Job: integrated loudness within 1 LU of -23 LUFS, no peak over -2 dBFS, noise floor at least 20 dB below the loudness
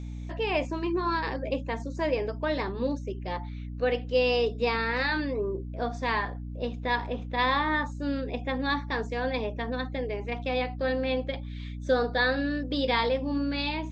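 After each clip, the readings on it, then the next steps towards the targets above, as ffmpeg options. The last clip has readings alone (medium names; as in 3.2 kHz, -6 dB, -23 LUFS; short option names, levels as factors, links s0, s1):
hum 60 Hz; highest harmonic 300 Hz; hum level -34 dBFS; loudness -29.0 LUFS; peak level -13.0 dBFS; loudness target -23.0 LUFS
-> -af "bandreject=f=60:t=h:w=4,bandreject=f=120:t=h:w=4,bandreject=f=180:t=h:w=4,bandreject=f=240:t=h:w=4,bandreject=f=300:t=h:w=4"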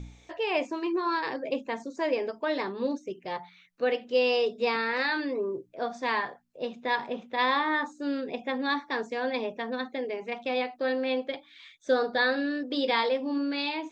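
hum not found; loudness -29.5 LUFS; peak level -13.5 dBFS; loudness target -23.0 LUFS
-> -af "volume=2.11"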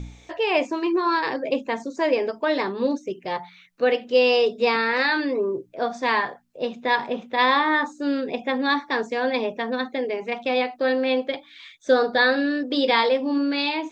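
loudness -23.0 LUFS; peak level -7.0 dBFS; noise floor -52 dBFS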